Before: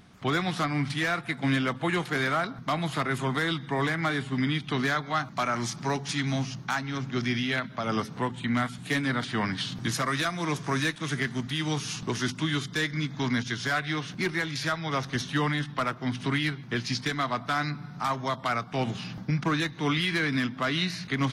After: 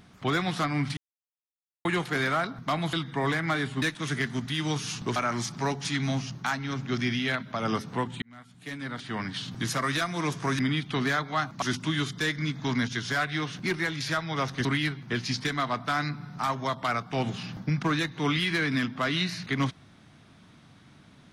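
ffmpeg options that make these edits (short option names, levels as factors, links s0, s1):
-filter_complex "[0:a]asplit=10[s0][s1][s2][s3][s4][s5][s6][s7][s8][s9];[s0]atrim=end=0.97,asetpts=PTS-STARTPTS,afade=t=out:st=0.966:d=0.004:c=hsin[s10];[s1]atrim=start=0.97:end=1.85,asetpts=PTS-STARTPTS,volume=0[s11];[s2]atrim=start=1.85:end=2.932,asetpts=PTS-STARTPTS,afade=t=in:d=0.004:c=hsin[s12];[s3]atrim=start=3.478:end=4.372[s13];[s4]atrim=start=10.828:end=12.172[s14];[s5]atrim=start=5.398:end=8.46,asetpts=PTS-STARTPTS,afade=t=out:st=3.058:d=0.004:c=hsin[s15];[s6]atrim=start=8.46:end=10.832,asetpts=PTS-STARTPTS,afade=t=in:d=1.63[s16];[s7]atrim=start=4.368:end=5.402[s17];[s8]atrim=start=12.168:end=15.202[s18];[s9]atrim=start=16.258[s19];[s10][s11][s12]concat=n=3:v=0:a=1[s20];[s20][s13]acrossfade=d=0.004:c1=hsin:c2=hsin[s21];[s21][s14]acrossfade=d=0.004:c1=hsin:c2=hsin[s22];[s15][s16]concat=n=2:v=0:a=1[s23];[s22][s23]acrossfade=d=0.004:c1=hsin:c2=hsin[s24];[s24][s17]acrossfade=d=0.004:c1=hsin:c2=hsin[s25];[s25][s18]acrossfade=d=0.004:c1=hsin:c2=hsin[s26];[s26][s19]acrossfade=d=0.004:c1=hsin:c2=hsin"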